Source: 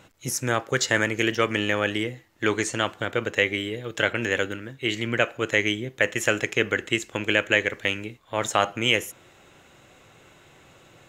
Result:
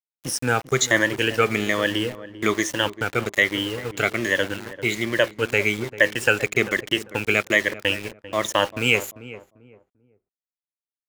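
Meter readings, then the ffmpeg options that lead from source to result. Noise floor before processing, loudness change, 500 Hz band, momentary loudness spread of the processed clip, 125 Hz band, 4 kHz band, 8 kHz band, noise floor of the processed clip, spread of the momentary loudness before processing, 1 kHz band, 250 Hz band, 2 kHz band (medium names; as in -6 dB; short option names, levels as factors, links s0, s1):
-55 dBFS, +2.5 dB, +2.5 dB, 9 LU, +1.5 dB, +2.0 dB, +2.5 dB, under -85 dBFS, 7 LU, +1.5 dB, +2.0 dB, +3.0 dB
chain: -filter_complex "[0:a]afftfilt=real='re*pow(10,14/40*sin(2*PI*(1.2*log(max(b,1)*sr/1024/100)/log(2)-(-1.2)*(pts-256)/sr)))':imag='im*pow(10,14/40*sin(2*PI*(1.2*log(max(b,1)*sr/1024/100)/log(2)-(-1.2)*(pts-256)/sr)))':win_size=1024:overlap=0.75,aeval=exprs='val(0)*gte(abs(val(0)),0.0266)':c=same,asplit=2[s0][s1];[s1]adelay=394,lowpass=f=920:p=1,volume=0.211,asplit=2[s2][s3];[s3]adelay=394,lowpass=f=920:p=1,volume=0.3,asplit=2[s4][s5];[s5]adelay=394,lowpass=f=920:p=1,volume=0.3[s6];[s0][s2][s4][s6]amix=inputs=4:normalize=0"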